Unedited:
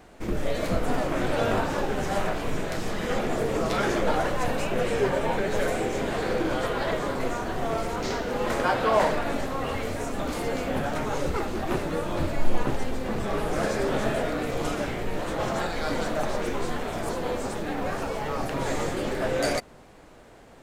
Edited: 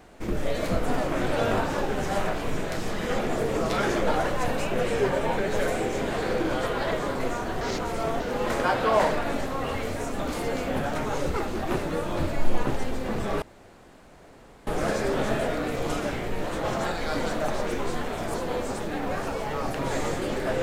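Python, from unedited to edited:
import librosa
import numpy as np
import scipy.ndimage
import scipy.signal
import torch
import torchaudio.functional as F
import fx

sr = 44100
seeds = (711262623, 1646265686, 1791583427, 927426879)

y = fx.edit(x, sr, fx.reverse_span(start_s=7.61, length_s=0.59),
    fx.insert_room_tone(at_s=13.42, length_s=1.25), tone=tone)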